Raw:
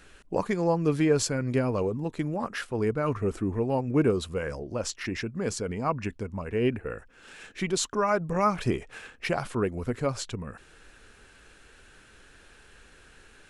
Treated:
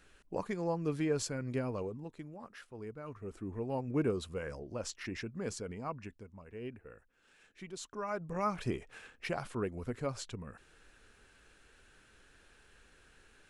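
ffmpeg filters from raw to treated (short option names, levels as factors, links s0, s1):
-af "volume=2.99,afade=t=out:st=1.68:d=0.6:silence=0.375837,afade=t=in:st=3.18:d=0.65:silence=0.334965,afade=t=out:st=5.45:d=0.85:silence=0.334965,afade=t=in:st=7.76:d=0.79:silence=0.334965"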